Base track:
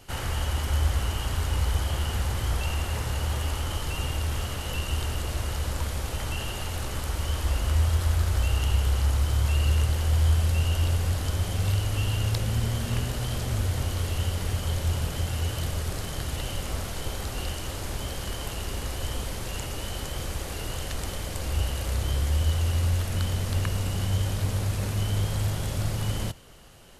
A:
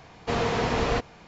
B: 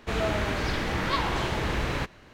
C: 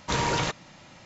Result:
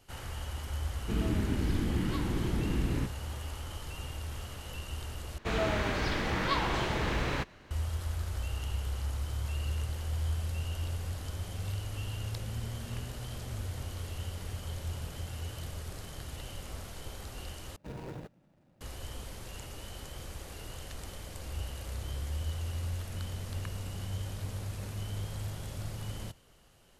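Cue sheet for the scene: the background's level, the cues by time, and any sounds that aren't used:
base track −11 dB
0:01.01: mix in B −14 dB + low shelf with overshoot 430 Hz +13 dB, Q 1.5
0:05.38: overwrite with B −3 dB
0:17.76: overwrite with C −12 dB + running median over 41 samples
not used: A

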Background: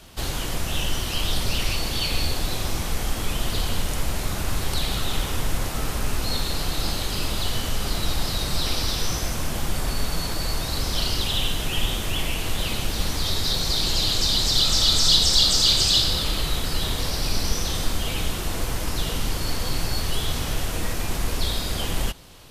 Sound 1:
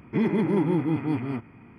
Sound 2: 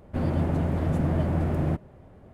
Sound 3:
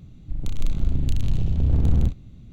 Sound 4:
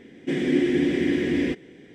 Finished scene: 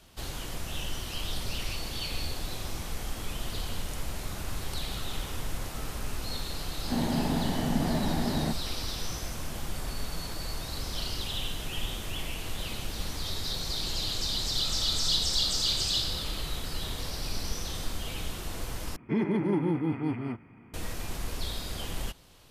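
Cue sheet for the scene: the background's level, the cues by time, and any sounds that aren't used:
background −9.5 dB
0:06.76: mix in 2 + loudspeaker in its box 200–2,200 Hz, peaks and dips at 230 Hz +6 dB, 340 Hz −6 dB, 540 Hz −7 dB, 860 Hz +5 dB, 1,300 Hz −8 dB, 1,800 Hz +6 dB
0:18.96: overwrite with 1 −4 dB
not used: 3, 4

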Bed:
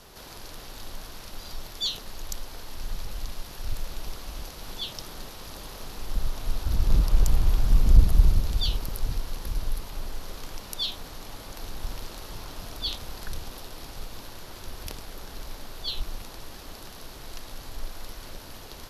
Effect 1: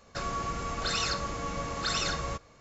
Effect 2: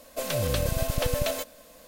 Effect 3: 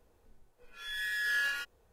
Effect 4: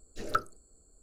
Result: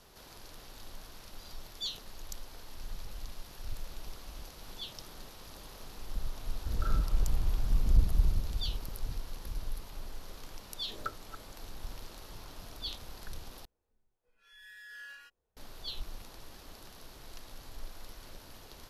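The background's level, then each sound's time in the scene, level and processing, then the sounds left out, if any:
bed −8.5 dB
0:06.47: mix in 4 −18 dB + four-comb reverb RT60 0.78 s, combs from 28 ms, DRR −6 dB
0:10.71: mix in 4 −9.5 dB + delay that plays each chunk backwards 247 ms, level −12 dB
0:13.65: overwrite with 3 −17 dB
not used: 1, 2

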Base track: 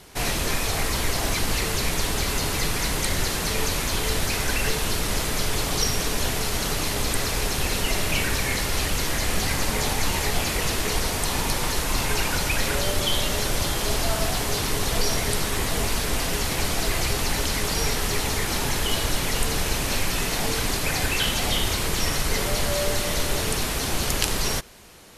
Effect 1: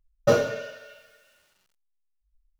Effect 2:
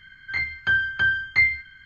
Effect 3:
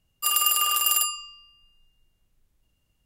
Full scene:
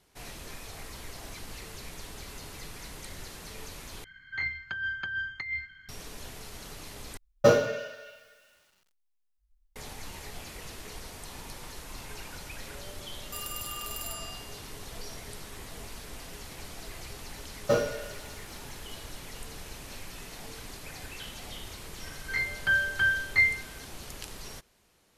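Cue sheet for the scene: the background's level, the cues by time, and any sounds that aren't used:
base track −18.5 dB
0:04.04: overwrite with 2 −8 dB + compressor whose output falls as the input rises −25 dBFS
0:07.17: overwrite with 1
0:13.10: mix in 3 −3 dB + downward compressor 3 to 1, threshold −37 dBFS
0:17.42: mix in 1 −5.5 dB
0:22.00: mix in 2 −4 dB

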